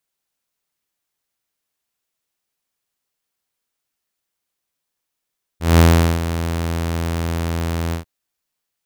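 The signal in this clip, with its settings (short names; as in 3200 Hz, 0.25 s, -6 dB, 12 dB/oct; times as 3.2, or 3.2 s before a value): ADSR saw 83.5 Hz, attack 0.185 s, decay 0.405 s, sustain -12.5 dB, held 2.33 s, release 0.114 s -4.5 dBFS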